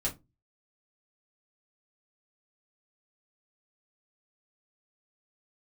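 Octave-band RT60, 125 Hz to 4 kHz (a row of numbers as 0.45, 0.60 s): 0.45, 0.35, 0.25, 0.20, 0.15, 0.15 s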